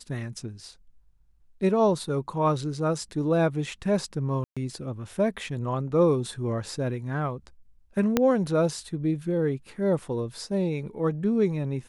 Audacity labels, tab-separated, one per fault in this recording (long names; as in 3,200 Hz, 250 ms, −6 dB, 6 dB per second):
4.440000	4.570000	drop-out 126 ms
8.170000	8.170000	click −7 dBFS